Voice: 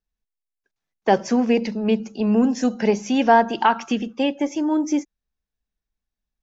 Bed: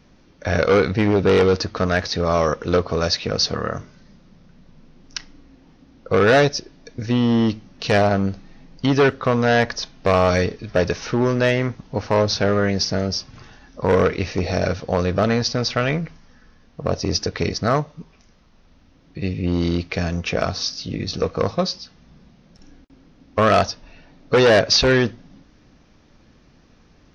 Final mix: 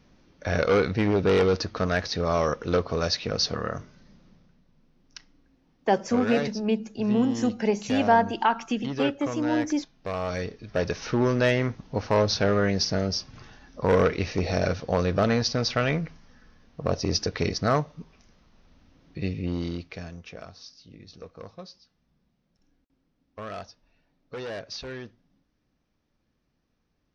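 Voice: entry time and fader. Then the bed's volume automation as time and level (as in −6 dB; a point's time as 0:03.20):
4.80 s, −5.0 dB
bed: 0:04.29 −5.5 dB
0:04.65 −14.5 dB
0:10.13 −14.5 dB
0:11.14 −4 dB
0:19.21 −4 dB
0:20.47 −21.5 dB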